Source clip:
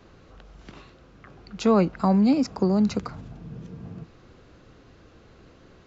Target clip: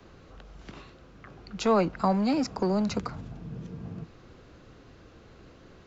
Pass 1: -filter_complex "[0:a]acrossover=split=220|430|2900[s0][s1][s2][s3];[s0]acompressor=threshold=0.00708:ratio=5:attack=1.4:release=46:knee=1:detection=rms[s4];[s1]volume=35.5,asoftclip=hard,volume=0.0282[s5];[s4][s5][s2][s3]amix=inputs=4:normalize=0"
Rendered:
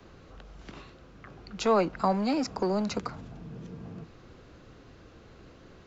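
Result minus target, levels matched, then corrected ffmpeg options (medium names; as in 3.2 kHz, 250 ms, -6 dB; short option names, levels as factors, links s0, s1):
compression: peak gain reduction +9 dB
-filter_complex "[0:a]acrossover=split=220|430|2900[s0][s1][s2][s3];[s0]acompressor=threshold=0.0266:ratio=5:attack=1.4:release=46:knee=1:detection=rms[s4];[s1]volume=35.5,asoftclip=hard,volume=0.0282[s5];[s4][s5][s2][s3]amix=inputs=4:normalize=0"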